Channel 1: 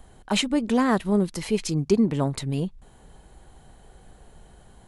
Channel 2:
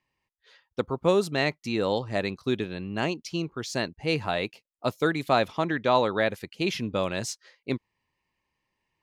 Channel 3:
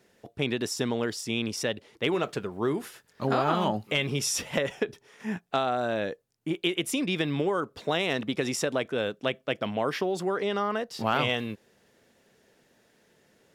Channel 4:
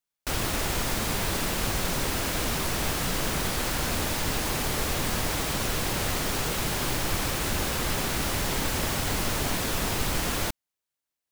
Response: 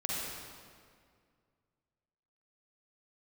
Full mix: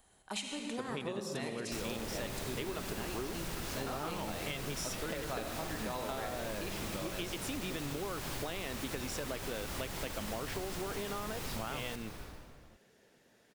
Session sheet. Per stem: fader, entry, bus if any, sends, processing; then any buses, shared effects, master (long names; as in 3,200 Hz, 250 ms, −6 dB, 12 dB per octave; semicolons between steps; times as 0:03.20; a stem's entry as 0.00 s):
−16.5 dB, 0.00 s, send −3.5 dB, spectral tilt +2.5 dB per octave
−11.5 dB, 0.00 s, send −3 dB, no processing
−2.5 dB, 0.55 s, no send, no processing
−8.0 dB, 1.45 s, send −9 dB, no processing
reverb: on, RT60 2.1 s, pre-delay 40 ms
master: downward compressor 6 to 1, threshold −36 dBFS, peak gain reduction 14 dB